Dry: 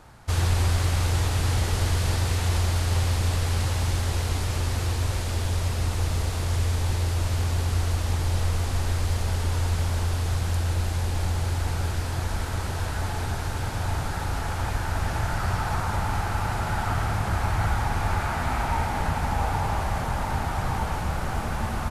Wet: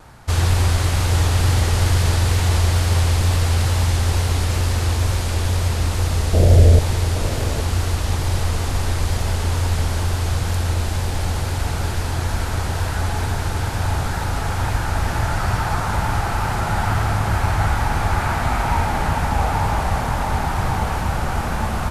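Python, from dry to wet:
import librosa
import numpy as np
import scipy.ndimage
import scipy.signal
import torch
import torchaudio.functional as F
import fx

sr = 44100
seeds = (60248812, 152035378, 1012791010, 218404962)

y = fx.low_shelf_res(x, sr, hz=760.0, db=9.0, q=3.0, at=(6.33, 6.79))
y = fx.echo_multitap(y, sr, ms=(396, 817), db=(-18.0, -9.5))
y = fx.vibrato(y, sr, rate_hz=2.2, depth_cents=32.0)
y = y * 10.0 ** (5.5 / 20.0)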